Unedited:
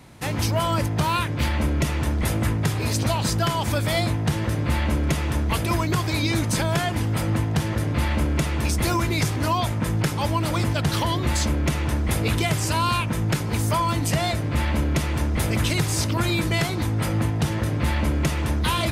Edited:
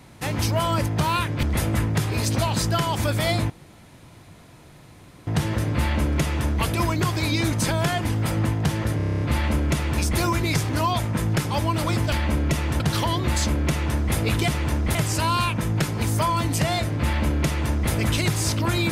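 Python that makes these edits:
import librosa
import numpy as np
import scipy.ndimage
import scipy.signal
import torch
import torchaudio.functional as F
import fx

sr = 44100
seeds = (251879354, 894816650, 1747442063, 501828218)

y = fx.edit(x, sr, fx.move(start_s=1.43, length_s=0.68, to_s=10.79),
    fx.insert_room_tone(at_s=4.18, length_s=1.77),
    fx.stutter(start_s=7.88, slice_s=0.03, count=9),
    fx.duplicate(start_s=14.97, length_s=0.47, to_s=12.47), tone=tone)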